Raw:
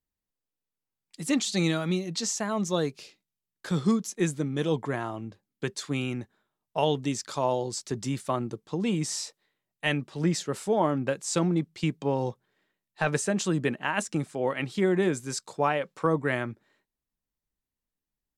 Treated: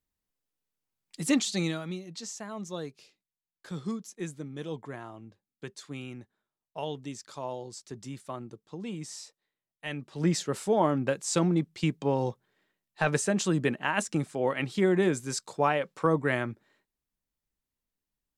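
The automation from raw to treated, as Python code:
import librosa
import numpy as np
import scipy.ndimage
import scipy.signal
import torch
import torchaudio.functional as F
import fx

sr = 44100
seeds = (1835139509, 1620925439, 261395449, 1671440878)

y = fx.gain(x, sr, db=fx.line((1.27, 2.0), (1.98, -10.0), (9.88, -10.0), (10.28, 0.0)))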